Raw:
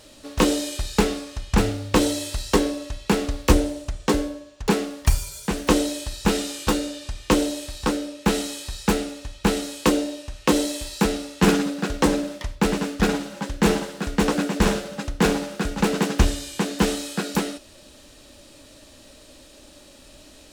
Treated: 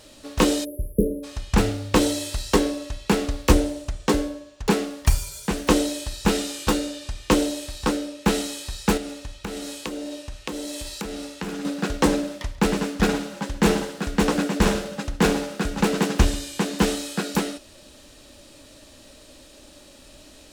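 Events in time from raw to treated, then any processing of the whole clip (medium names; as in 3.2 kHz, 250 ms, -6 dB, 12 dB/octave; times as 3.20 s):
0.65–1.24 s: spectral selection erased 610–10000 Hz
8.97–11.65 s: compression, threshold -28 dBFS
12.24–16.94 s: delay 138 ms -19 dB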